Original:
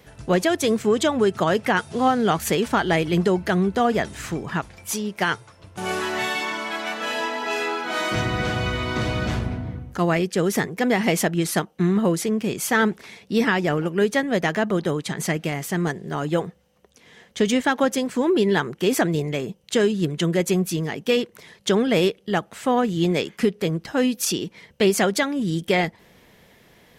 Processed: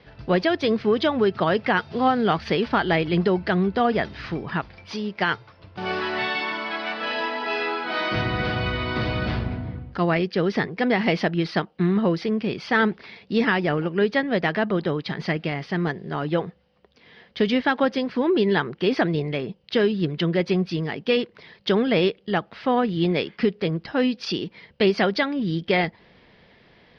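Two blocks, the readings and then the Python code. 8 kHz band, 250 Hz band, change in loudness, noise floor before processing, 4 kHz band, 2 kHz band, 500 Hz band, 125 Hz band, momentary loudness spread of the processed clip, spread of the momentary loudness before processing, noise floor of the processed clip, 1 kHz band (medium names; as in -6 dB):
under -20 dB, -1.0 dB, -1.0 dB, -55 dBFS, -1.0 dB, 0.0 dB, -1.0 dB, -1.0 dB, 8 LU, 8 LU, -56 dBFS, -0.5 dB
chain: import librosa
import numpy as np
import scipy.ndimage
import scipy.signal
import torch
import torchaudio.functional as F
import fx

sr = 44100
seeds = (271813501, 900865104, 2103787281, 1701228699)

y = scipy.signal.sosfilt(scipy.signal.ellip(4, 1.0, 40, 4900.0, 'lowpass', fs=sr, output='sos'), x)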